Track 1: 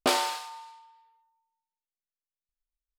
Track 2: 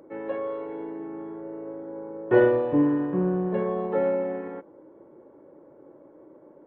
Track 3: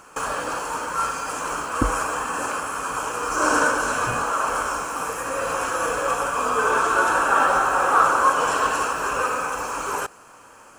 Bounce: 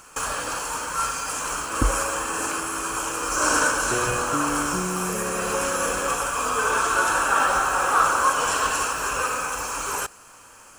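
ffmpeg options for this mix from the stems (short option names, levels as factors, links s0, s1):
-filter_complex "[1:a]acompressor=threshold=0.0631:ratio=6,adelay=1600,volume=0.668[s0];[2:a]highshelf=f=2000:g=11.5,volume=0.531[s1];[s0][s1]amix=inputs=2:normalize=0,lowshelf=f=120:g=11"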